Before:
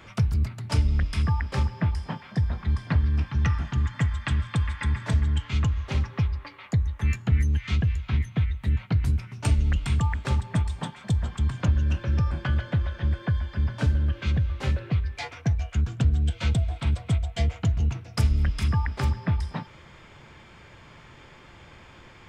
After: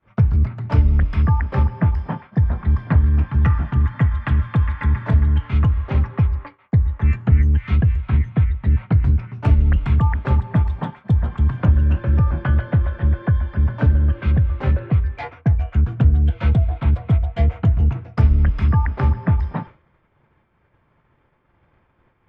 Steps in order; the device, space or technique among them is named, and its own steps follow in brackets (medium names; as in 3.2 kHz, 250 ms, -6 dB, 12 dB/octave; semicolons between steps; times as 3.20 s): hearing-loss simulation (low-pass 1.6 kHz 12 dB/octave; expander -37 dBFS); trim +7.5 dB